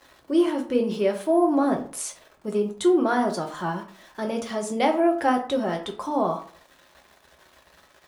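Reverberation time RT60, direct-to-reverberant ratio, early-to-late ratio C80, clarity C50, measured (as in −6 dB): 0.45 s, 2.0 dB, 14.5 dB, 10.0 dB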